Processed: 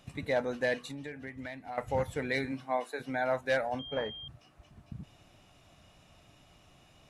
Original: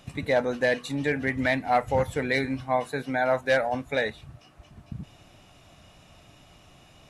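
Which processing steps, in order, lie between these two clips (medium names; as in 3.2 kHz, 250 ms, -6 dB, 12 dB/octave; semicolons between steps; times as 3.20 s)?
0.79–1.78 s: compression 6:1, threshold -33 dBFS, peak gain reduction 14.5 dB; 2.51–2.99 s: high-pass 120 Hz -> 350 Hz 24 dB/octave; 3.79–4.28 s: class-D stage that switches slowly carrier 3.2 kHz; trim -6.5 dB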